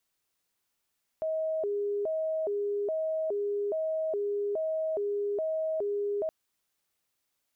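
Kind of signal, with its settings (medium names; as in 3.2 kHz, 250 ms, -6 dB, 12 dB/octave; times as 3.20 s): siren hi-lo 408–635 Hz 1.2 per s sine -27.5 dBFS 5.07 s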